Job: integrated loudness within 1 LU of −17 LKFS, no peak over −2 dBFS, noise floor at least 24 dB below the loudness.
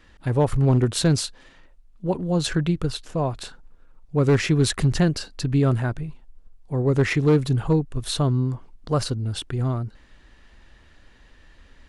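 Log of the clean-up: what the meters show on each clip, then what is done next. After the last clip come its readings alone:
share of clipped samples 0.5%; peaks flattened at −11.5 dBFS; integrated loudness −23.0 LKFS; sample peak −11.5 dBFS; target loudness −17.0 LKFS
→ clipped peaks rebuilt −11.5 dBFS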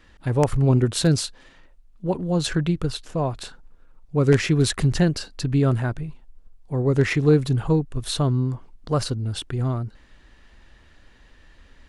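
share of clipped samples 0.0%; integrated loudness −22.5 LKFS; sample peak −2.5 dBFS; target loudness −17.0 LKFS
→ level +5.5 dB
brickwall limiter −2 dBFS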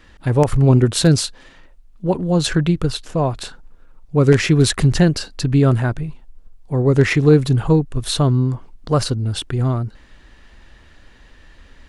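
integrated loudness −17.5 LKFS; sample peak −2.0 dBFS; background noise floor −47 dBFS

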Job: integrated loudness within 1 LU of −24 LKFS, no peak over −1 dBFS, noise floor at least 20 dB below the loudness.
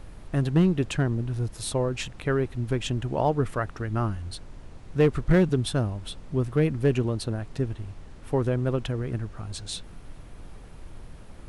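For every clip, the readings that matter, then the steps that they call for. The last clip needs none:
share of clipped samples 0.3%; peaks flattened at −13.0 dBFS; background noise floor −45 dBFS; target noise floor −47 dBFS; integrated loudness −27.0 LKFS; sample peak −13.0 dBFS; target loudness −24.0 LKFS
→ clipped peaks rebuilt −13 dBFS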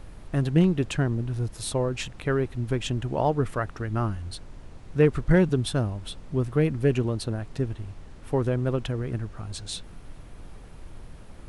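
share of clipped samples 0.0%; background noise floor −45 dBFS; target noise floor −47 dBFS
→ noise reduction from a noise print 6 dB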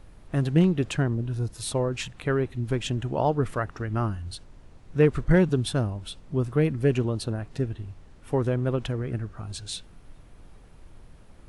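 background noise floor −50 dBFS; integrated loudness −27.0 LKFS; sample peak −8.0 dBFS; target loudness −24.0 LKFS
→ level +3 dB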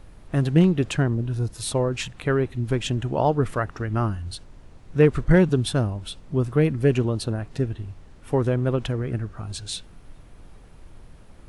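integrated loudness −24.0 LKFS; sample peak −5.0 dBFS; background noise floor −47 dBFS

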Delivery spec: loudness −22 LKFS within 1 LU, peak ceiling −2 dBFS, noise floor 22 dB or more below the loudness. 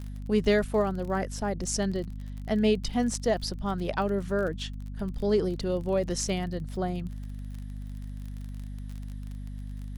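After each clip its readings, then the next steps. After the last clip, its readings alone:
crackle rate 34 per second; mains hum 50 Hz; hum harmonics up to 250 Hz; level of the hum −35 dBFS; integrated loudness −29.0 LKFS; sample peak −11.5 dBFS; target loudness −22.0 LKFS
→ click removal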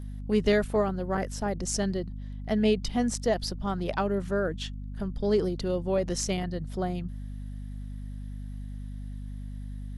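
crackle rate 0.20 per second; mains hum 50 Hz; hum harmonics up to 250 Hz; level of the hum −35 dBFS
→ hum removal 50 Hz, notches 5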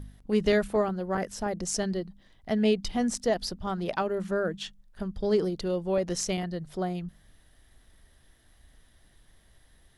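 mains hum none found; integrated loudness −29.5 LKFS; sample peak −12.5 dBFS; target loudness −22.0 LKFS
→ level +7.5 dB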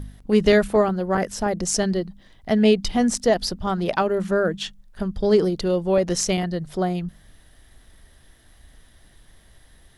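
integrated loudness −22.0 LKFS; sample peak −5.0 dBFS; background noise floor −54 dBFS

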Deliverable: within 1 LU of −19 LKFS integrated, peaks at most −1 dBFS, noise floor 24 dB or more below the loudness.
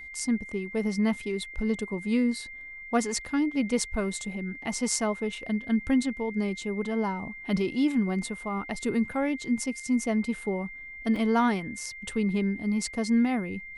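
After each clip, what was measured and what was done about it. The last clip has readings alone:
number of dropouts 1; longest dropout 1.5 ms; interfering tone 2,100 Hz; level of the tone −40 dBFS; integrated loudness −28.5 LKFS; sample peak −10.5 dBFS; target loudness −19.0 LKFS
→ repair the gap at 0:11.16, 1.5 ms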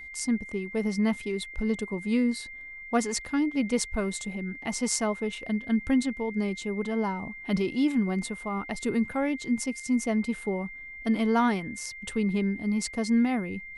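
number of dropouts 0; interfering tone 2,100 Hz; level of the tone −40 dBFS
→ notch filter 2,100 Hz, Q 30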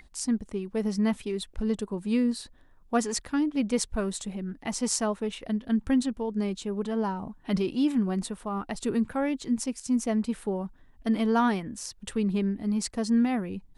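interfering tone none found; integrated loudness −29.0 LKFS; sample peak −10.0 dBFS; target loudness −19.0 LKFS
→ level +10 dB
brickwall limiter −1 dBFS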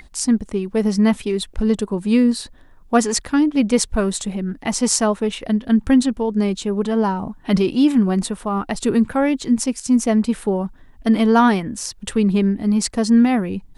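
integrated loudness −19.0 LKFS; sample peak −1.0 dBFS; background noise floor −46 dBFS

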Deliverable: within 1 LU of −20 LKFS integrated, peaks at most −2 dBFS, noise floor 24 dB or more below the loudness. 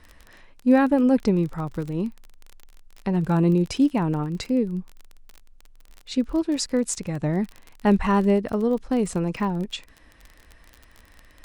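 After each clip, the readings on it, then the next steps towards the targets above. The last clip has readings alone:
crackle rate 29 per second; integrated loudness −23.5 LKFS; sample peak −6.5 dBFS; target loudness −20.0 LKFS
→ click removal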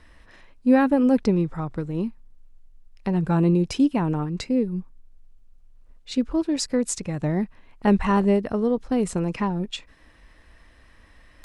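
crackle rate 0.17 per second; integrated loudness −23.5 LKFS; sample peak −6.5 dBFS; target loudness −20.0 LKFS
→ level +3.5 dB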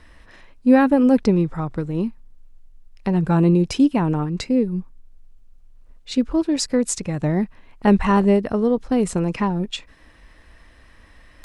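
integrated loudness −20.0 LKFS; sample peak −3.0 dBFS; background noise floor −50 dBFS

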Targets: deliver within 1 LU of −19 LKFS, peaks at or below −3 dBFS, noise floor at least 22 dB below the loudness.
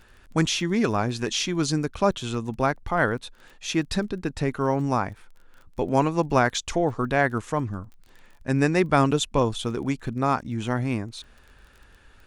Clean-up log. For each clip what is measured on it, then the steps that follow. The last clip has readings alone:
crackle rate 23 per second; integrated loudness −25.0 LKFS; sample peak −5.0 dBFS; target loudness −19.0 LKFS
→ click removal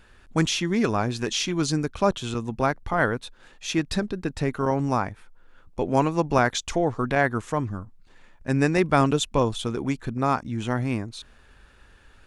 crackle rate 0 per second; integrated loudness −25.0 LKFS; sample peak −5.0 dBFS; target loudness −19.0 LKFS
→ level +6 dB
brickwall limiter −3 dBFS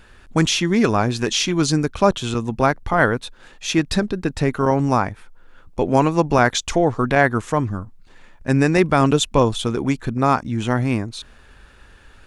integrated loudness −19.5 LKFS; sample peak −3.0 dBFS; background noise floor −48 dBFS

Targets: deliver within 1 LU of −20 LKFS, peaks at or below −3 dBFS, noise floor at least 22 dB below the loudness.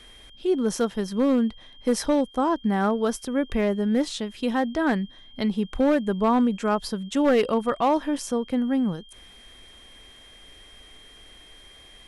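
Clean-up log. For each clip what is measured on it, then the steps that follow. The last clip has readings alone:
share of clipped samples 0.7%; peaks flattened at −14.5 dBFS; interfering tone 3,200 Hz; level of the tone −49 dBFS; integrated loudness −24.5 LKFS; sample peak −14.5 dBFS; target loudness −20.0 LKFS
→ clipped peaks rebuilt −14.5 dBFS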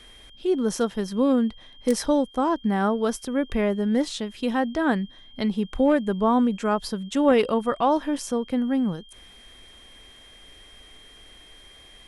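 share of clipped samples 0.0%; interfering tone 3,200 Hz; level of the tone −49 dBFS
→ notch filter 3,200 Hz, Q 30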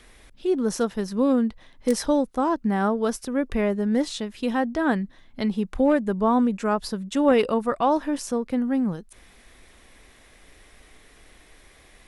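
interfering tone none found; integrated loudness −24.0 LKFS; sample peak −7.5 dBFS; target loudness −20.0 LKFS
→ level +4 dB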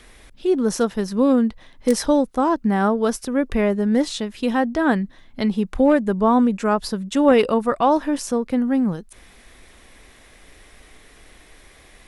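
integrated loudness −20.0 LKFS; sample peak −3.5 dBFS; background noise floor −50 dBFS

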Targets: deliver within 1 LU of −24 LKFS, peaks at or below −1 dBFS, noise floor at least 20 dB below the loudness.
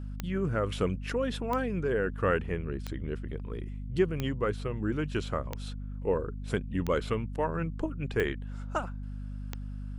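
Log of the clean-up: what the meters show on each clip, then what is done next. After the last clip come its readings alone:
number of clicks 8; mains hum 50 Hz; hum harmonics up to 250 Hz; level of the hum −35 dBFS; integrated loudness −32.5 LKFS; sample peak −13.5 dBFS; target loudness −24.0 LKFS
→ click removal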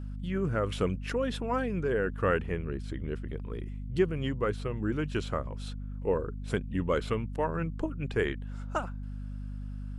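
number of clicks 0; mains hum 50 Hz; hum harmonics up to 250 Hz; level of the hum −35 dBFS
→ hum removal 50 Hz, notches 5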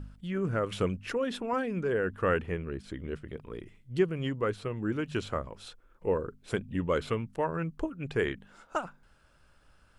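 mains hum none found; integrated loudness −32.5 LKFS; sample peak −13.5 dBFS; target loudness −24.0 LKFS
→ level +8.5 dB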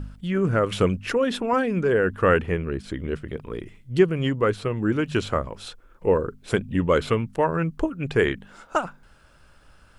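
integrated loudness −24.0 LKFS; sample peak −5.0 dBFS; background noise floor −55 dBFS

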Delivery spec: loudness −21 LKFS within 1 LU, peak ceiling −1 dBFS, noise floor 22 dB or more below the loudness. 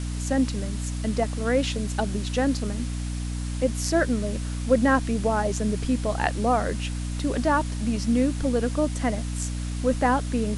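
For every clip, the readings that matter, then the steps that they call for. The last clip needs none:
mains hum 60 Hz; hum harmonics up to 300 Hz; level of the hum −27 dBFS; background noise floor −30 dBFS; target noise floor −48 dBFS; integrated loudness −25.5 LKFS; sample peak −7.0 dBFS; target loudness −21.0 LKFS
→ hum removal 60 Hz, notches 5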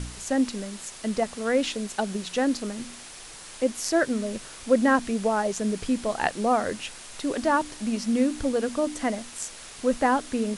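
mains hum none found; background noise floor −43 dBFS; target noise floor −49 dBFS
→ noise reduction from a noise print 6 dB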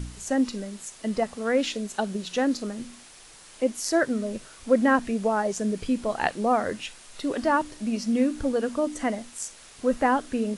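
background noise floor −49 dBFS; integrated loudness −26.5 LKFS; sample peak −8.5 dBFS; target loudness −21.0 LKFS
→ level +5.5 dB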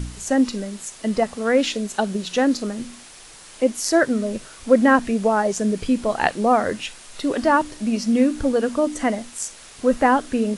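integrated loudness −21.0 LKFS; sample peak −3.0 dBFS; background noise floor −44 dBFS

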